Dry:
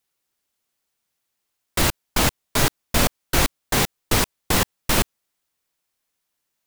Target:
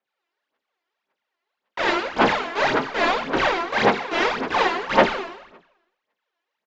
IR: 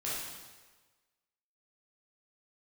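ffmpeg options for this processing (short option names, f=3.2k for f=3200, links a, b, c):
-filter_complex "[0:a]asplit=2[a][b];[b]highpass=f=720:p=1,volume=10dB,asoftclip=type=tanh:threshold=-4dB[c];[a][c]amix=inputs=2:normalize=0,lowpass=f=1.3k:p=1,volume=-6dB[d];[1:a]atrim=start_sample=2205,asetrate=61740,aresample=44100[e];[d][e]afir=irnorm=-1:irlink=0,aphaser=in_gain=1:out_gain=1:delay=3:decay=0.71:speed=1.8:type=sinusoidal,acrossover=split=210 4400:gain=0.0708 1 0.141[f][g][h];[f][g][h]amix=inputs=3:normalize=0,aresample=16000,aresample=44100"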